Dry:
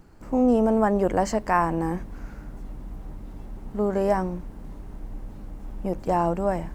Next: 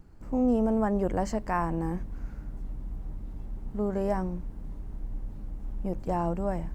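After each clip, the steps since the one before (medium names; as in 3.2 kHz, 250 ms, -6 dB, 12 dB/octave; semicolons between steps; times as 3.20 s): bass shelf 200 Hz +9.5 dB; trim -8 dB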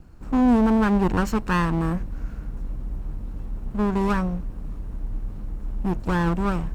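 comb filter that takes the minimum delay 0.72 ms; trim +6.5 dB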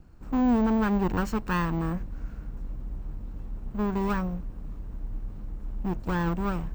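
careless resampling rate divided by 2×, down filtered, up hold; trim -5 dB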